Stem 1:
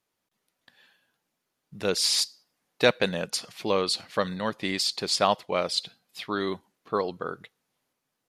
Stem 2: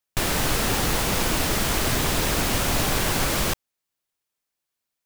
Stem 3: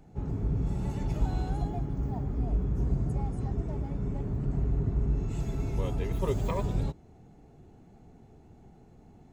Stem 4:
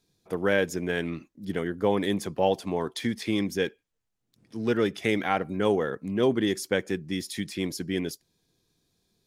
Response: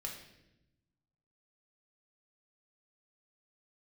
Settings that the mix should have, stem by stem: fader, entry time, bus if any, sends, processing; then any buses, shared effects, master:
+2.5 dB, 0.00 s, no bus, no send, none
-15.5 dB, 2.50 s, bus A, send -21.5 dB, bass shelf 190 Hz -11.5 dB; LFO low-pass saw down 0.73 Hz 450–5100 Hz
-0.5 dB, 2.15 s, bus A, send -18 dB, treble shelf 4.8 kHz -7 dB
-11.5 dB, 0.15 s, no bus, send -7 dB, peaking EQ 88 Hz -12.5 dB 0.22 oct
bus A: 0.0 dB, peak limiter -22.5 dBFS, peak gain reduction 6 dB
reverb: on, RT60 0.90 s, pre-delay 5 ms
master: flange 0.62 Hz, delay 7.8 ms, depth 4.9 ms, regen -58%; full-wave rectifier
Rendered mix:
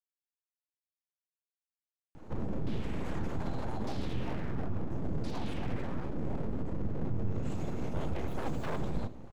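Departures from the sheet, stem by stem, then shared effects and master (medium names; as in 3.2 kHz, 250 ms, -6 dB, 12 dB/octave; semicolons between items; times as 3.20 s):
stem 1: muted; stem 3 -0.5 dB -> +10.0 dB; stem 4: muted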